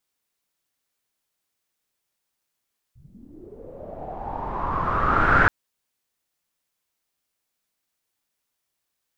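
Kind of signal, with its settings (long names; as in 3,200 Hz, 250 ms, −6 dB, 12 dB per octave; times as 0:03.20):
filter sweep on noise pink, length 2.53 s lowpass, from 100 Hz, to 1,500 Hz, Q 7.1, linear, gain ramp +34 dB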